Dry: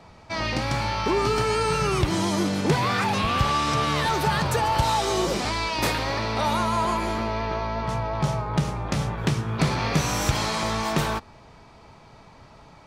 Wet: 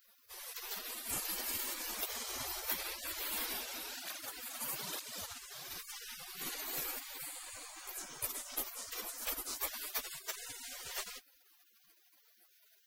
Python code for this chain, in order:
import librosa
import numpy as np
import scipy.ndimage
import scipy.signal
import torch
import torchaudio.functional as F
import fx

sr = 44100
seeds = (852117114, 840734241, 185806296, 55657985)

y = fx.high_shelf(x, sr, hz=4500.0, db=9.5)
y = fx.spec_gate(y, sr, threshold_db=-30, keep='weak')
y = fx.peak_eq(y, sr, hz=160.0, db=-7.0, octaves=0.41)
y = fx.spec_gate(y, sr, threshold_db=-15, keep='weak')
y = fx.flanger_cancel(y, sr, hz=1.1, depth_ms=7.4, at=(3.53, 5.69), fade=0.02)
y = F.gain(torch.from_numpy(y), 18.0).numpy()